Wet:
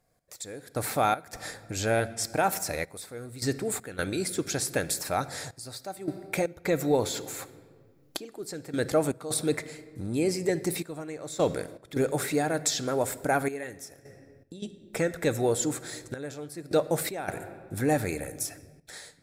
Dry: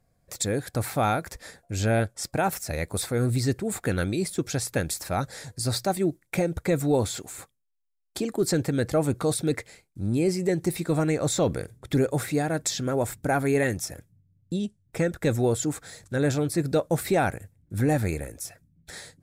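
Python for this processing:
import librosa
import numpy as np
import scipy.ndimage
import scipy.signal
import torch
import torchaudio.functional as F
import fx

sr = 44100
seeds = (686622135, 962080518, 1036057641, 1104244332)

y = fx.recorder_agc(x, sr, target_db=-21.0, rise_db_per_s=16.0, max_gain_db=30)
y = fx.bass_treble(y, sr, bass_db=-9, treble_db=1)
y = fx.room_shoebox(y, sr, seeds[0], volume_m3=2300.0, walls='mixed', distance_m=0.44)
y = fx.step_gate(y, sr, bpm=79, pattern='x...xx.xxxxxxx', floor_db=-12.0, edge_ms=4.5)
y = fx.peak_eq(y, sr, hz=8700.0, db=-10.5, octaves=0.25, at=(6.47, 8.32))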